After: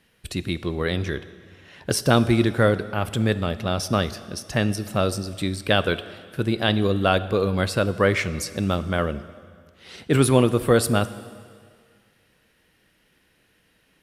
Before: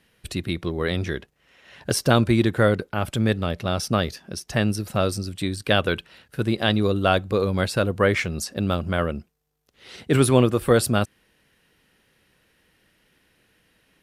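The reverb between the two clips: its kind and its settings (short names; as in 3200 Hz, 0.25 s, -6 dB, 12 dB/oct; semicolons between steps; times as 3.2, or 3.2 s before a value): plate-style reverb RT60 2 s, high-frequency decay 0.9×, DRR 13.5 dB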